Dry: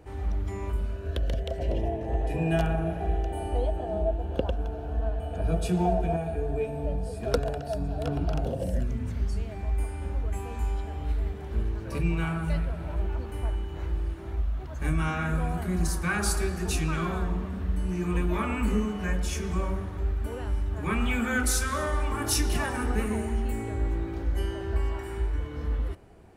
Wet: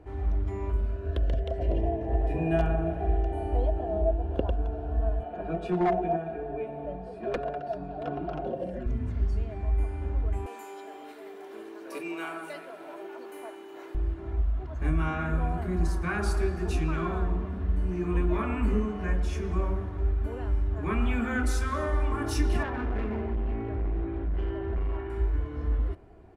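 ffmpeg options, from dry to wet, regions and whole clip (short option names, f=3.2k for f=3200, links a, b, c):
-filter_complex "[0:a]asettb=1/sr,asplit=3[a][b][c];[a]atrim=end=5.234[d];[b]atrim=start=5.23:end=8.86,asetpts=PTS-STARTPTS,afade=t=in:d=0.004:c=qsin,afade=t=out:st=3.626:d=0.004:c=qsin,acrossover=split=180 3900:gain=0.141 1 0.251[e][f][g];[e][f][g]amix=inputs=3:normalize=0,aecho=1:1:5.5:0.55,atrim=end_sample=160083,aeval=exprs='0.112*(abs(mod(val(0)/0.112+3,4)-2)-1)':c=same[h];[c]atrim=start=8.856[i];[d][h]acrossfade=d=0.004:c1=hsin:c2=qsin[j];[j][i]acrossfade=d=0.004:c1=qsin:c2=hsin,asettb=1/sr,asplit=3[k][l][m];[k]atrim=end=10.464[n];[l]atrim=start=10.46:end=13.95,asetpts=PTS-STARTPTS,afade=t=in:d=0.004:c=qsin,afade=t=out:st=3.486:d=0.004:c=qsin,highpass=f=320:w=0.5412,highpass=f=320:w=1.3066,aemphasis=mode=production:type=75fm[o];[m]atrim=start=13.946[p];[n][o]acrossfade=d=0.004:c1=hsin:c2=qsin[q];[q][p]acrossfade=d=0.004:c1=qsin:c2=hsin,asettb=1/sr,asplit=3[r][s][t];[r]atrim=end=22.634[u];[s]atrim=start=22.63:end=25.1,asetpts=PTS-STARTPTS,afade=t=in:d=0.004:c=qsin,afade=t=out:st=2.466:d=0.004:c=qsin,lowpass=f=3.4k:w=0.5412,lowpass=f=3.4k:w=1.3066,asoftclip=type=hard:threshold=-27dB[v];[t]atrim=start=25.096[w];[u][v]acrossfade=d=0.004:c1=hsin:c2=qsin[x];[x][w]acrossfade=d=0.004:c1=qsin:c2=hsin,lowpass=f=1.6k:p=1,aecho=1:1:2.9:0.32"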